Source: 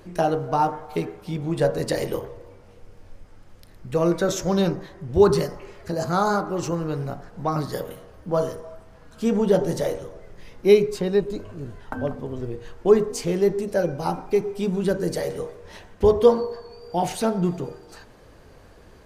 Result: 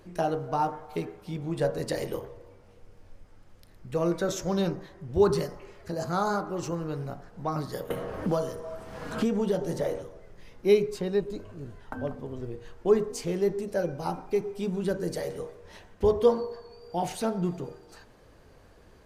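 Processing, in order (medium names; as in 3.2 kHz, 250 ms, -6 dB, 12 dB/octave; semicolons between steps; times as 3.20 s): 7.90–10.02 s: three bands compressed up and down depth 100%; trim -6 dB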